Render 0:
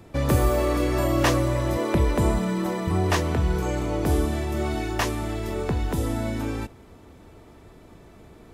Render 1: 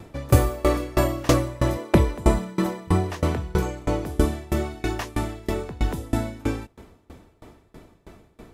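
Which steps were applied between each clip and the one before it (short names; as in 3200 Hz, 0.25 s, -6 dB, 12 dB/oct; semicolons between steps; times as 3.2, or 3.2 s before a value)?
dB-ramp tremolo decaying 3.1 Hz, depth 26 dB; gain +7.5 dB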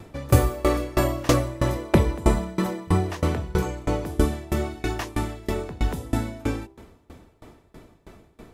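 de-hum 65.93 Hz, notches 16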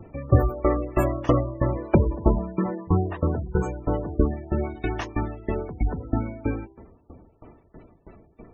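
spectral gate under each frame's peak -20 dB strong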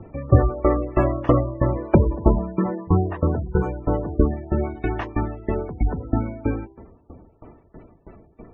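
LPF 2200 Hz 12 dB/oct; gain +3 dB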